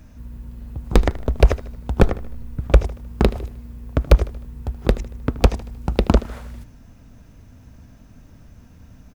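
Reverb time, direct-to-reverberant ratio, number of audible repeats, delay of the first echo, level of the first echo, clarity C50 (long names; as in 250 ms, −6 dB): no reverb audible, no reverb audible, 3, 77 ms, −17.5 dB, no reverb audible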